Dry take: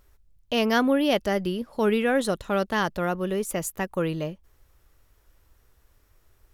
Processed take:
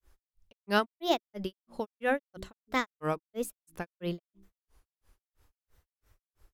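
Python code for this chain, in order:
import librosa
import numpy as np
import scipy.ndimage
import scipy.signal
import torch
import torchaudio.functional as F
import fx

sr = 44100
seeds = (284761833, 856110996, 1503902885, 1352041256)

y = fx.hum_notches(x, sr, base_hz=60, count=6)
y = fx.granulator(y, sr, seeds[0], grain_ms=199.0, per_s=3.0, spray_ms=20.0, spread_st=3)
y = F.gain(torch.from_numpy(y), -2.0).numpy()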